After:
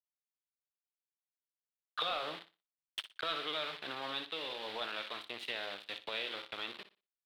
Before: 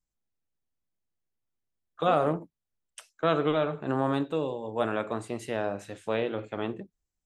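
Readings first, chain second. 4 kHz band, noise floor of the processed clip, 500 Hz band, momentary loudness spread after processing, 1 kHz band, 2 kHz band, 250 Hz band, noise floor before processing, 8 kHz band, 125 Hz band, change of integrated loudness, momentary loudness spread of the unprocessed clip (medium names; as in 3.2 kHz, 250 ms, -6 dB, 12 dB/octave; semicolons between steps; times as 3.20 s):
+6.0 dB, under -85 dBFS, -16.0 dB, 9 LU, -10.5 dB, -2.5 dB, -21.0 dB, under -85 dBFS, no reading, -26.5 dB, -9.5 dB, 9 LU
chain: recorder AGC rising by 31 dB/s; small samples zeroed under -34 dBFS; band-pass filter 5.1 kHz, Q 0.62; saturation -30.5 dBFS, distortion -10 dB; resonant high shelf 4.9 kHz -10.5 dB, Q 3; on a send: flutter echo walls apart 10.2 m, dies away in 0.28 s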